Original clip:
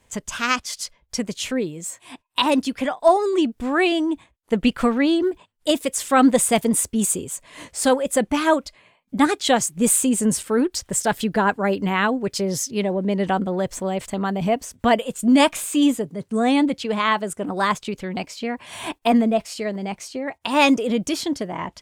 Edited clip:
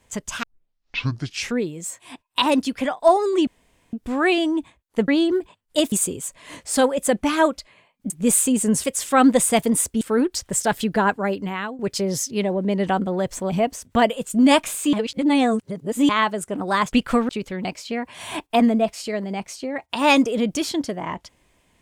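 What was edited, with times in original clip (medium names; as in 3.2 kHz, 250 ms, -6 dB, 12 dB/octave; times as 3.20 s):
0.43 s: tape start 1.19 s
3.47 s: insert room tone 0.46 s
4.62–4.99 s: move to 17.81 s
5.83–7.00 s: move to 10.41 s
9.18–9.67 s: delete
11.47–12.19 s: fade out, to -14.5 dB
13.90–14.39 s: delete
15.82–16.98 s: reverse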